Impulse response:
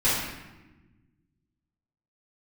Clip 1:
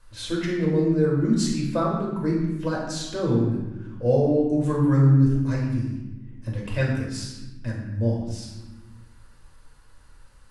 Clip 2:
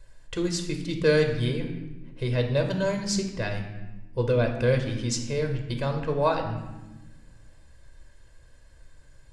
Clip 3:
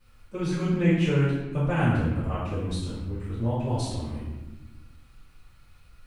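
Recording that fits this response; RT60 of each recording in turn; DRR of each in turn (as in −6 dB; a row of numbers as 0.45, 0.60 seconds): 3; 1.2, 1.2, 1.1 seconds; −4.0, 4.0, −12.5 decibels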